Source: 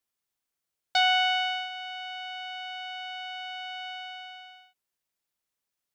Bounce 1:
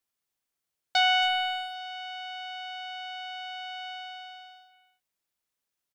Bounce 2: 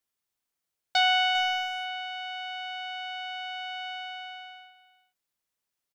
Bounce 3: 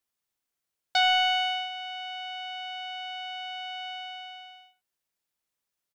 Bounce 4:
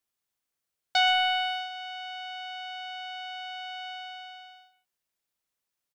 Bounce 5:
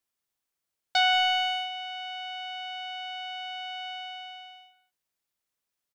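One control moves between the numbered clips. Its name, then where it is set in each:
speakerphone echo, time: 270, 400, 80, 120, 180 ms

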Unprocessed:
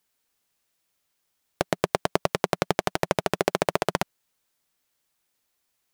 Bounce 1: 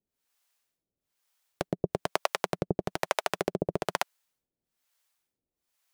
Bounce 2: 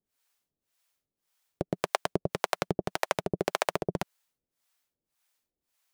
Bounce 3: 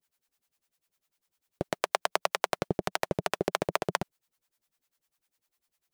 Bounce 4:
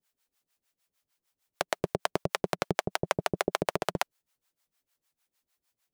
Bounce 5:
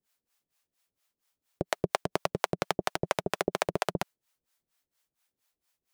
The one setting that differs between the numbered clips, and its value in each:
harmonic tremolo, rate: 1.1, 1.8, 10, 6.6, 4.3 Hz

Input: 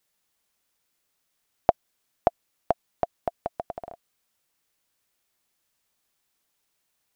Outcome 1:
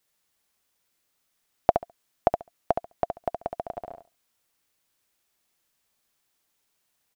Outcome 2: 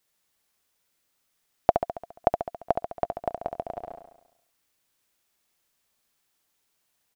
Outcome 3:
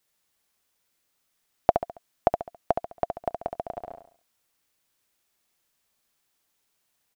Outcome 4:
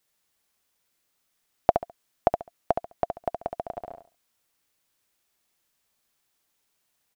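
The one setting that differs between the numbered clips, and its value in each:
feedback echo, feedback: 15, 58, 38, 23%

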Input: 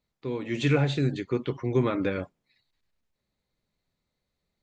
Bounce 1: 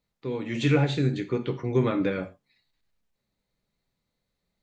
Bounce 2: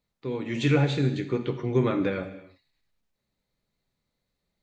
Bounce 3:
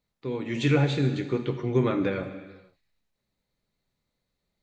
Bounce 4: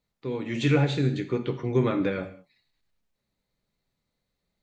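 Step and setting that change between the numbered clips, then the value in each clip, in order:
non-linear reverb, gate: 0.14, 0.35, 0.53, 0.23 s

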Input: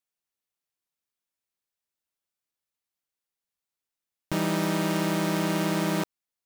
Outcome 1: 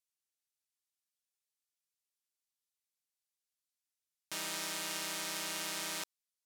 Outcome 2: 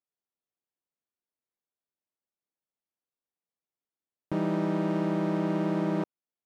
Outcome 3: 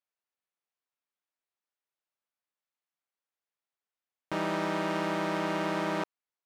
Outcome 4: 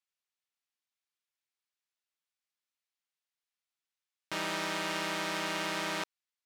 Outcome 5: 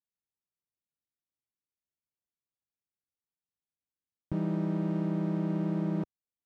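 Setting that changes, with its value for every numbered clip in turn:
band-pass, frequency: 7800, 330, 1000, 2700, 100 Hz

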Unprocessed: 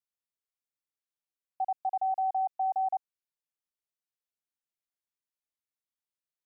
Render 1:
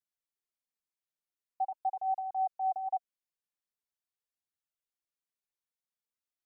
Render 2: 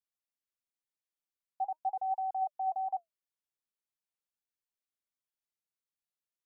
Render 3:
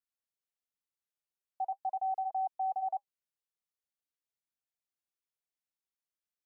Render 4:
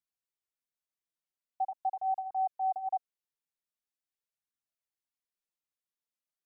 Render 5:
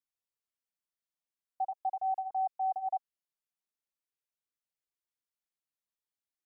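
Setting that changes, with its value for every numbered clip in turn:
flange, regen: +28, +78, -69, +7, -22%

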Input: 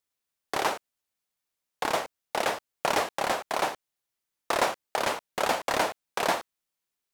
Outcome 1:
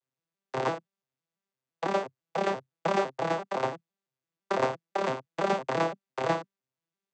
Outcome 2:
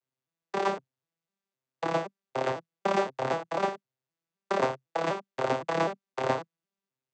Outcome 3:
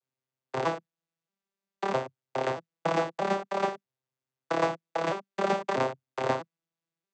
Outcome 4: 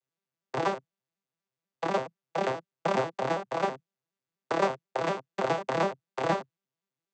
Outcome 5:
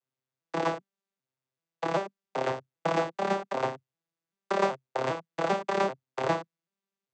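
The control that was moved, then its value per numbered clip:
arpeggiated vocoder, a note every: 169, 255, 639, 82, 392 ms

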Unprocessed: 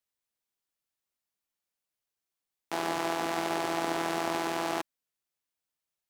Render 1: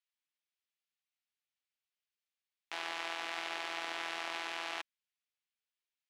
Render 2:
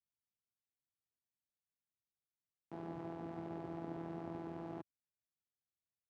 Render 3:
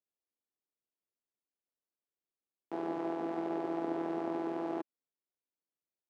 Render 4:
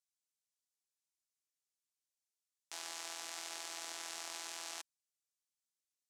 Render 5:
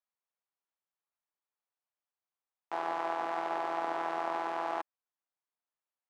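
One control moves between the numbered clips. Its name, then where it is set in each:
band-pass, frequency: 2700, 110, 340, 7000, 940 Hz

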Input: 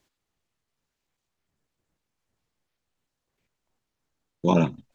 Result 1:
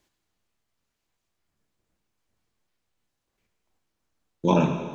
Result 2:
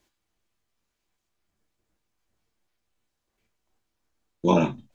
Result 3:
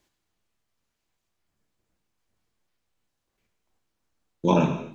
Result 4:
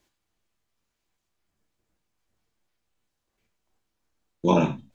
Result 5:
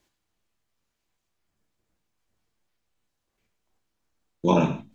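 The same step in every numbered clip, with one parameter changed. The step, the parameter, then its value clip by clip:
non-linear reverb, gate: 470, 80, 310, 120, 180 ms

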